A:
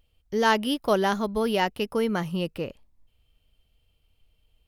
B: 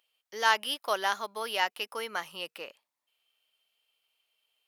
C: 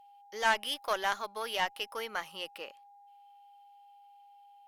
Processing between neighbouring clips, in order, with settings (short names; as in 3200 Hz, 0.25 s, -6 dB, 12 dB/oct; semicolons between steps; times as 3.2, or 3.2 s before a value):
HPF 940 Hz 12 dB/oct
whine 810 Hz -53 dBFS; tube stage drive 15 dB, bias 0.45; Doppler distortion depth 0.1 ms